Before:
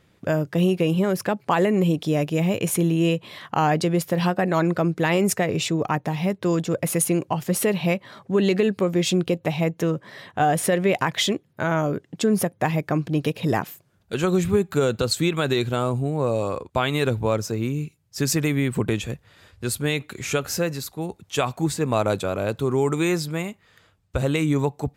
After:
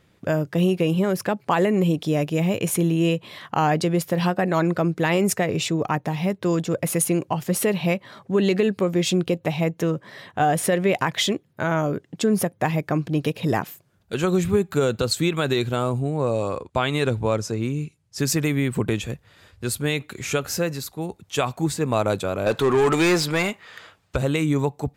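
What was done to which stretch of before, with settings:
0:15.99–0:18.19: low-pass filter 11,000 Hz 24 dB per octave
0:22.46–0:24.16: mid-hump overdrive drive 21 dB, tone 4,100 Hz, clips at −11 dBFS

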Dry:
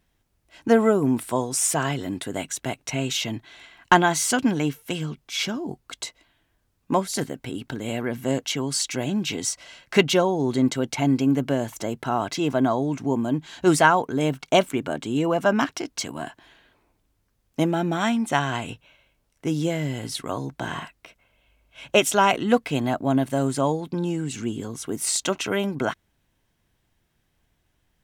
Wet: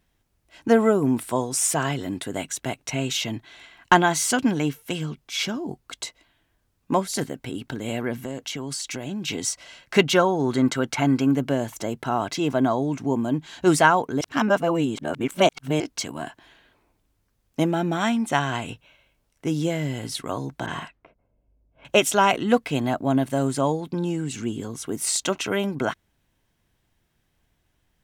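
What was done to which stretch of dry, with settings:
0:08.15–0:09.28: downward compressor, threshold −27 dBFS
0:10.13–0:11.32: parametric band 1,400 Hz +9 dB 0.88 octaves
0:14.21–0:15.80: reverse
0:20.66–0:21.85: low-pass that shuts in the quiet parts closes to 360 Hz, open at −29 dBFS

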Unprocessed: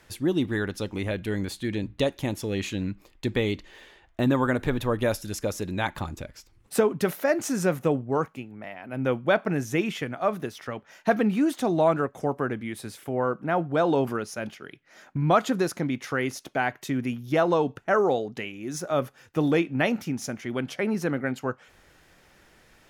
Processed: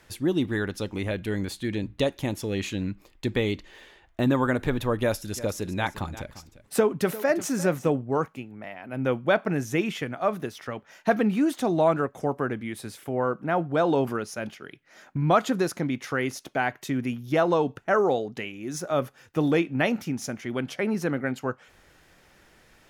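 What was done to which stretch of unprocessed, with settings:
0:05.01–0:07.90: single-tap delay 348 ms −16 dB

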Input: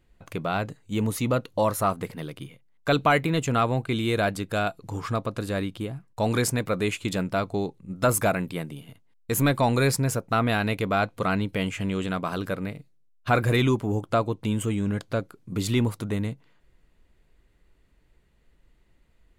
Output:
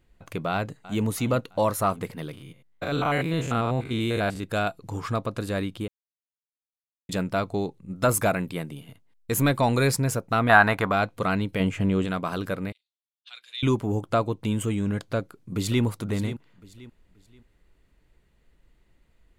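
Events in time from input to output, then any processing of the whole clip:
0:00.51–0:01.07: delay throw 330 ms, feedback 50%, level −17 dB
0:02.33–0:04.44: spectrum averaged block by block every 100 ms
0:05.88–0:07.09: silence
0:10.49–0:10.92: flat-topped bell 1,100 Hz +13.5 dB
0:11.60–0:12.05: tilt shelving filter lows +5 dB, about 1,400 Hz
0:12.72–0:13.63: four-pole ladder band-pass 3,800 Hz, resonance 65%
0:15.18–0:15.83: delay throw 530 ms, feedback 30%, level −12 dB

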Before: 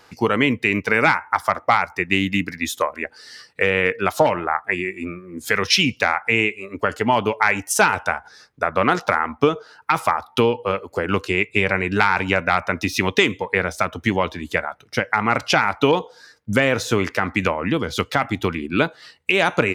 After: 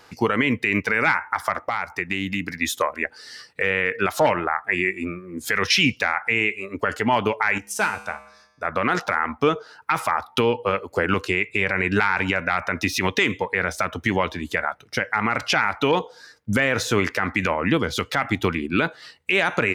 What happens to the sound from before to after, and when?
0:01.54–0:02.52: downward compressor, threshold −22 dBFS
0:07.58–0:08.65: tuned comb filter 69 Hz, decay 0.93 s, harmonics odd, mix 70%
whole clip: dynamic equaliser 1,800 Hz, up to +6 dB, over −31 dBFS, Q 1.5; boost into a limiter +8 dB; level −7.5 dB

